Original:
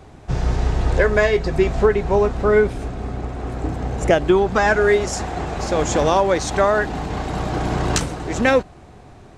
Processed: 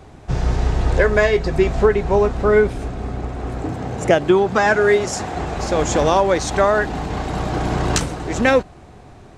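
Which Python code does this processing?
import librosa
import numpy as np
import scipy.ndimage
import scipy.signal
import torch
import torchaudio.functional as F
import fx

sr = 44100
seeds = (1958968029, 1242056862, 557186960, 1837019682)

y = fx.highpass(x, sr, hz=83.0, slope=24, at=(3.63, 5.35))
y = y * librosa.db_to_amplitude(1.0)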